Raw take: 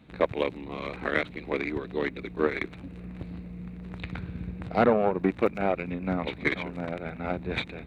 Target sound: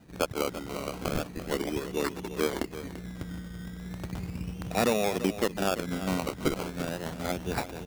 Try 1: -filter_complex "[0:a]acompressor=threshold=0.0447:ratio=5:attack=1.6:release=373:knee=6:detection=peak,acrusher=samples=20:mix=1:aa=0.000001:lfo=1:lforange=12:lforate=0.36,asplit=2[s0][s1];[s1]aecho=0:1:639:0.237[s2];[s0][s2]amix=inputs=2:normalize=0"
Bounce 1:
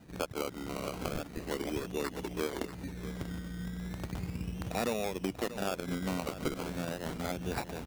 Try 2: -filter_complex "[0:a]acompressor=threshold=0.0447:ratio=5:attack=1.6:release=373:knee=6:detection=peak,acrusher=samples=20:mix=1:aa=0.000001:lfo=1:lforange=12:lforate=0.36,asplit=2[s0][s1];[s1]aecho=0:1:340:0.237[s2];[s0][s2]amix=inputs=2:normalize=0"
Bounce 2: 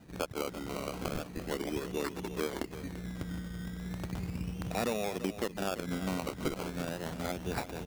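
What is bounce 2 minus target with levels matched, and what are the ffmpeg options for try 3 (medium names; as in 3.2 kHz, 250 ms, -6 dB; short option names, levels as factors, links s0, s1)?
compression: peak gain reduction +7.5 dB
-filter_complex "[0:a]acompressor=threshold=0.133:ratio=5:attack=1.6:release=373:knee=6:detection=peak,acrusher=samples=20:mix=1:aa=0.000001:lfo=1:lforange=12:lforate=0.36,asplit=2[s0][s1];[s1]aecho=0:1:340:0.237[s2];[s0][s2]amix=inputs=2:normalize=0"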